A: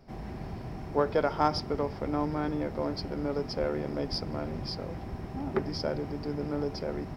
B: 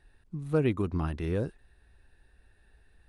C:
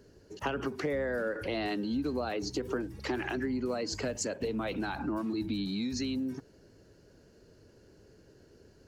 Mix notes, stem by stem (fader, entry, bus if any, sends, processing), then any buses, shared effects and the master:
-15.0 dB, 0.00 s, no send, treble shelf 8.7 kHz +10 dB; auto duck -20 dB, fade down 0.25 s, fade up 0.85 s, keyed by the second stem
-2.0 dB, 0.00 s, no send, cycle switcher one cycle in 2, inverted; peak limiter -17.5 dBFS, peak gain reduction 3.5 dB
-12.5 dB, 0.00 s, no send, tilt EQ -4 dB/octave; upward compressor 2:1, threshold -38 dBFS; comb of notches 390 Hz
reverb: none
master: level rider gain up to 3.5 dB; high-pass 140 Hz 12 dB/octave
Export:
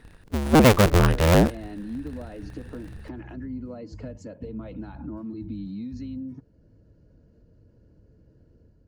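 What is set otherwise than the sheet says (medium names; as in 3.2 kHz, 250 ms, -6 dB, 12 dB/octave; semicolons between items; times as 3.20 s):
stem A: muted; stem B -2.0 dB -> +10.0 dB; master: missing high-pass 140 Hz 12 dB/octave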